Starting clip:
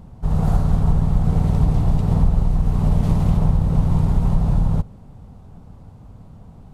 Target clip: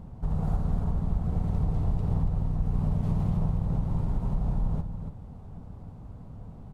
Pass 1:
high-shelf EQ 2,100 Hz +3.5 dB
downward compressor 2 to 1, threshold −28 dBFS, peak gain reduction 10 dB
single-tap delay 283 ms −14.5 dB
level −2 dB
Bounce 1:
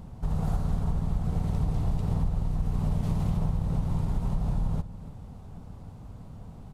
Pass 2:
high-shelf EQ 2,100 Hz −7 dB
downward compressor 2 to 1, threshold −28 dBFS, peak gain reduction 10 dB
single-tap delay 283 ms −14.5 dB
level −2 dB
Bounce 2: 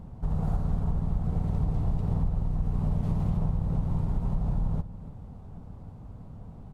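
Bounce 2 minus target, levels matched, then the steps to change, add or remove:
echo-to-direct −6.5 dB
change: single-tap delay 283 ms −8 dB

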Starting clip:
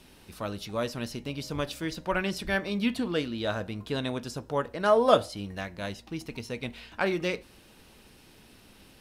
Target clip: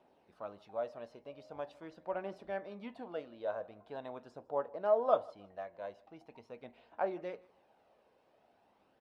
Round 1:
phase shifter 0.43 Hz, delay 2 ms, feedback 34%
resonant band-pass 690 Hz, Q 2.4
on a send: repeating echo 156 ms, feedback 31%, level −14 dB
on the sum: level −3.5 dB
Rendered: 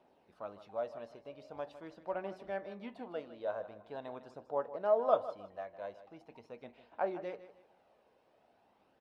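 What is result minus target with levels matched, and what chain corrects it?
echo-to-direct +10.5 dB
phase shifter 0.43 Hz, delay 2 ms, feedback 34%
resonant band-pass 690 Hz, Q 2.4
on a send: repeating echo 156 ms, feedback 31%, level −24.5 dB
on the sum: level −3.5 dB

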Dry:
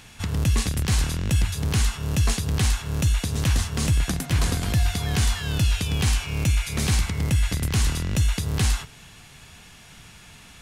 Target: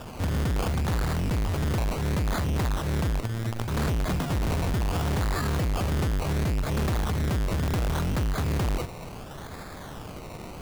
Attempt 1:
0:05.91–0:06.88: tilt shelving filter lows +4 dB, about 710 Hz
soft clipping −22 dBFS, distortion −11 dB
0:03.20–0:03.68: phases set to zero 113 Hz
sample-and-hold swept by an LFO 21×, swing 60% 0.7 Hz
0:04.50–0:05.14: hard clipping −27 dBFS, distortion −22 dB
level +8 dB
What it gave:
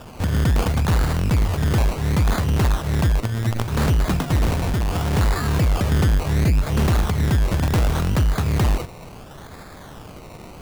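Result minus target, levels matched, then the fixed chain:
soft clipping: distortion −6 dB
0:05.91–0:06.88: tilt shelving filter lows +4 dB, about 710 Hz
soft clipping −32 dBFS, distortion −5 dB
0:03.20–0:03.68: phases set to zero 113 Hz
sample-and-hold swept by an LFO 21×, swing 60% 0.7 Hz
0:04.50–0:05.14: hard clipping −27 dBFS, distortion −76 dB
level +8 dB

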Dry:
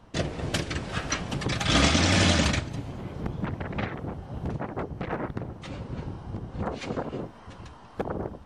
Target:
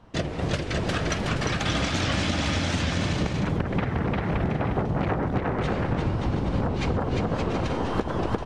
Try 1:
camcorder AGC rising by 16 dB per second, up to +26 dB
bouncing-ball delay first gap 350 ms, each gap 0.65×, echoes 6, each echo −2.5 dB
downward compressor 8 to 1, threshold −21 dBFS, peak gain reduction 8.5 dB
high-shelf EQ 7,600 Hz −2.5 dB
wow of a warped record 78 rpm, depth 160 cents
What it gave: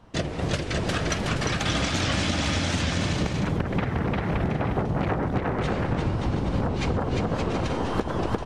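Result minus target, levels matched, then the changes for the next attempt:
8,000 Hz band +2.5 dB
change: high-shelf EQ 7,600 Hz −9.5 dB

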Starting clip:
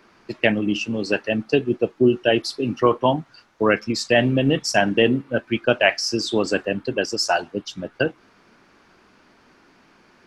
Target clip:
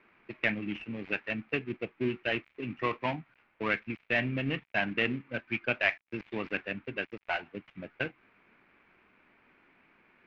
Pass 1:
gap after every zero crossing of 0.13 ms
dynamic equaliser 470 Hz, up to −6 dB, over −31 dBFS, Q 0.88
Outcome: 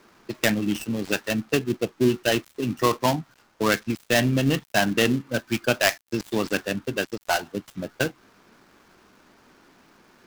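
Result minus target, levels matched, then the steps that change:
2,000 Hz band −4.0 dB
add after dynamic equaliser: transistor ladder low-pass 2,600 Hz, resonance 65%

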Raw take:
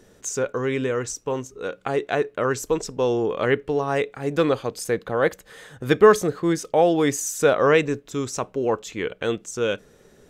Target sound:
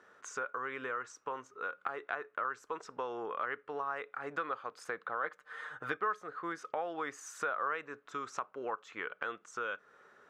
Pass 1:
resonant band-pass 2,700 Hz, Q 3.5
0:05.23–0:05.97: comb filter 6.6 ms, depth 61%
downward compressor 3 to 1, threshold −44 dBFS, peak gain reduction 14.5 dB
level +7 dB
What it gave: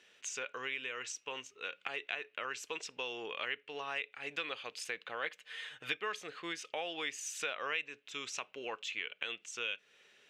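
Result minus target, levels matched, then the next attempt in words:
1,000 Hz band −7.0 dB
resonant band-pass 1,300 Hz, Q 3.5
0:05.23–0:05.97: comb filter 6.6 ms, depth 61%
downward compressor 3 to 1, threshold −44 dBFS, peak gain reduction 18.5 dB
level +7 dB

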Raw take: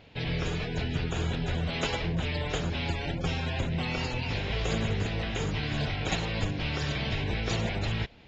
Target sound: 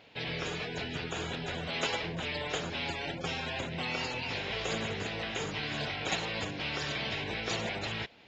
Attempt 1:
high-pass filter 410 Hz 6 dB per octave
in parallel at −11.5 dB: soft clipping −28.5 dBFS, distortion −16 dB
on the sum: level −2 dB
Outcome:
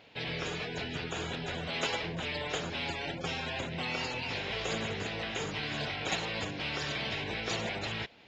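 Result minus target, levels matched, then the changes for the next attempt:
soft clipping: distortion +9 dB
change: soft clipping −21.5 dBFS, distortion −26 dB

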